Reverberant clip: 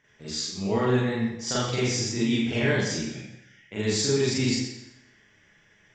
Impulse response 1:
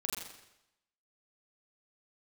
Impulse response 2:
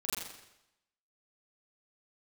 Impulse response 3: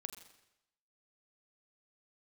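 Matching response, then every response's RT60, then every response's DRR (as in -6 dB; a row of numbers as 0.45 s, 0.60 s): 2; 0.90 s, 0.90 s, 0.90 s; -4.0 dB, -9.5 dB, 6.0 dB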